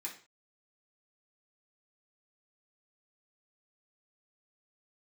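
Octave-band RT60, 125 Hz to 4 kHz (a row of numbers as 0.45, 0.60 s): 0.40 s, 0.35 s, 0.40 s, 0.40 s, 0.40 s, n/a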